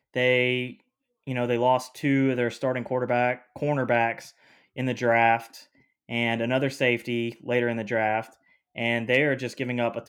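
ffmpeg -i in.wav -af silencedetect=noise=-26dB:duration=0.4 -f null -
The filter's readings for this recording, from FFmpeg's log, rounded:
silence_start: 0.67
silence_end: 1.28 | silence_duration: 0.61
silence_start: 4.19
silence_end: 4.78 | silence_duration: 0.59
silence_start: 5.37
silence_end: 6.11 | silence_duration: 0.74
silence_start: 8.21
silence_end: 8.78 | silence_duration: 0.58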